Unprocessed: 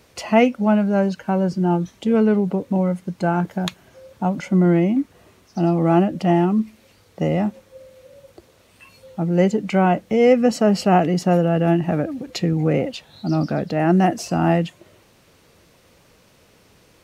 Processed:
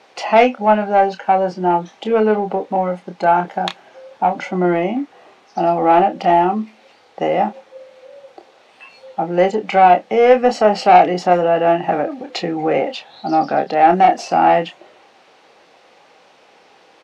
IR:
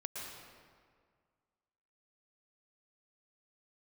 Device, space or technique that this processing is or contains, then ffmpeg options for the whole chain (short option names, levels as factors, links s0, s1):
intercom: -filter_complex "[0:a]highpass=410,lowpass=4200,equalizer=f=790:t=o:w=0.23:g=11.5,asoftclip=type=tanh:threshold=0.335,asplit=2[s0][s1];[s1]adelay=28,volume=0.398[s2];[s0][s2]amix=inputs=2:normalize=0,volume=2"